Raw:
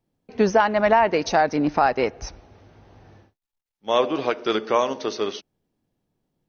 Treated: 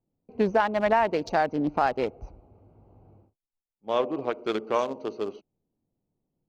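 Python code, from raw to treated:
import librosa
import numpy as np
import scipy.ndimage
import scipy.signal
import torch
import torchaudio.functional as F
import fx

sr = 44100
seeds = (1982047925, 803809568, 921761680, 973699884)

y = fx.wiener(x, sr, points=25)
y = fx.high_shelf(y, sr, hz=4100.0, db=-9.0, at=(2.19, 4.33))
y = y * 10.0 ** (-4.5 / 20.0)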